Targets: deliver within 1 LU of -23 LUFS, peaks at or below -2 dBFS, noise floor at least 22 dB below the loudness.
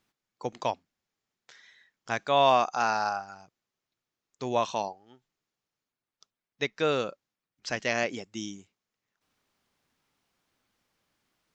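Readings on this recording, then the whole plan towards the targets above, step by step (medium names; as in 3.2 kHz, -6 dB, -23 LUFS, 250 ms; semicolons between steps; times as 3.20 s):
loudness -29.0 LUFS; peak level -9.5 dBFS; loudness target -23.0 LUFS
-> trim +6 dB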